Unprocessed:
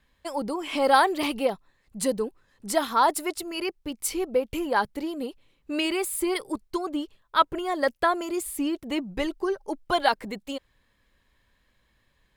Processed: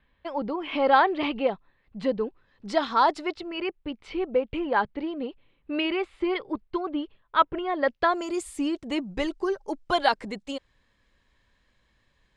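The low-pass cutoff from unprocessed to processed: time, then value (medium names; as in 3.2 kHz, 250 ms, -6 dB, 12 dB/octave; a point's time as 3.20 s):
low-pass 24 dB/octave
2.18 s 3.4 kHz
3.02 s 5.9 kHz
3.54 s 3.3 kHz
7.82 s 3.3 kHz
8.26 s 8.1 kHz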